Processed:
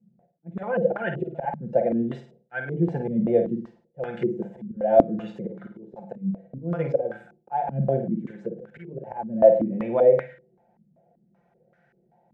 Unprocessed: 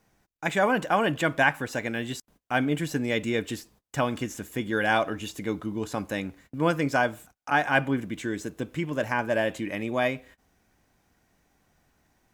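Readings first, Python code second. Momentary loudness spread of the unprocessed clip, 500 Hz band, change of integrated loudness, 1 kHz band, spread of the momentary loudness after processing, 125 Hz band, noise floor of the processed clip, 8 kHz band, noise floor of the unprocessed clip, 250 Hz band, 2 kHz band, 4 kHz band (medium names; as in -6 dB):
10 LU, +6.5 dB, +2.5 dB, -2.0 dB, 20 LU, +2.0 dB, -66 dBFS, under -30 dB, -77 dBFS, +1.5 dB, -11.5 dB, under -15 dB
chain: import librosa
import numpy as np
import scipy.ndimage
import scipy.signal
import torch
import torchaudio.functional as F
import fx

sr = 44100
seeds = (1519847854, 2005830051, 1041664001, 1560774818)

p1 = fx.block_float(x, sr, bits=7)
p2 = scipy.signal.sosfilt(scipy.signal.butter(2, 110.0, 'highpass', fs=sr, output='sos'), p1)
p3 = fx.hum_notches(p2, sr, base_hz=50, count=4)
p4 = p3 + 0.71 * np.pad(p3, (int(5.8 * sr / 1000.0), 0))[:len(p3)]
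p5 = fx.auto_swell(p4, sr, attack_ms=322.0)
p6 = fx.fixed_phaser(p5, sr, hz=300.0, stages=6)
p7 = p6 + fx.room_flutter(p6, sr, wall_m=8.9, rt60_s=0.44, dry=0)
p8 = fx.filter_held_lowpass(p7, sr, hz=5.2, low_hz=210.0, high_hz=1500.0)
y = p8 * librosa.db_to_amplitude(3.5)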